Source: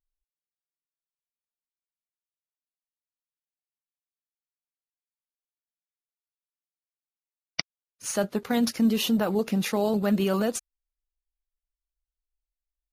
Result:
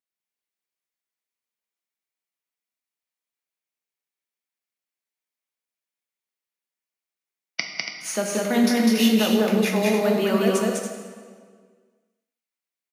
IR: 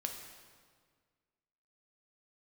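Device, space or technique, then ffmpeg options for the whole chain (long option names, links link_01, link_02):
stadium PA: -filter_complex "[0:a]highpass=frequency=170:width=0.5412,highpass=frequency=170:width=1.3066,equalizer=frequency=2200:width_type=o:width=0.5:gain=6,aecho=1:1:201.2|282.8:0.794|0.398[link_01];[1:a]atrim=start_sample=2205[link_02];[link_01][link_02]afir=irnorm=-1:irlink=0,asettb=1/sr,asplit=3[link_03][link_04][link_05];[link_03]atrim=end=8.564[link_06];[link_04]atrim=start=8.56:end=9.15,asetpts=PTS-STARTPTS,afade=type=in:duration=0.004:curve=qsin,afade=type=out:start_time=0.586:duration=0.004:curve=qsin,asplit=2[link_07][link_08];[link_08]adelay=25,volume=-6dB[link_09];[link_07][link_09]amix=inputs=2:normalize=0,atrim=end_sample=26019[link_10];[link_05]atrim=start=9.146[link_11];[link_06][link_10]acrossfade=duration=0.004:curve1=hsin:curve2=qsin[link_12];[link_12][link_11]acrossfade=duration=0.004:curve1=qsin:curve2=hsin,volume=2dB"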